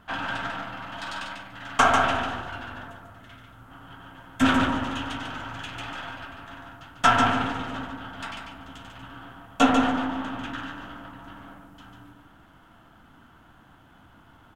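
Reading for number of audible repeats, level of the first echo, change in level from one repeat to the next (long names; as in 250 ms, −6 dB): 2, −5.5 dB, −15.5 dB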